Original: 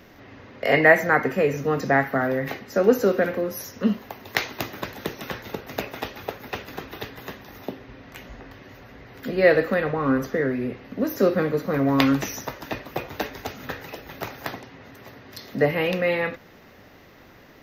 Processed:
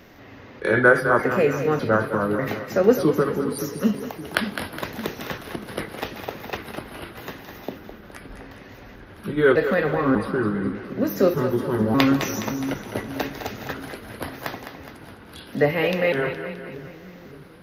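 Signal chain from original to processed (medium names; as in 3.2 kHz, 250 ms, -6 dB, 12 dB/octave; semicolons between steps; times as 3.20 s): pitch shift switched off and on -4 st, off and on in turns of 597 ms; two-band feedback delay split 340 Hz, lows 568 ms, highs 208 ms, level -9 dB; endings held to a fixed fall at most 310 dB/s; trim +1 dB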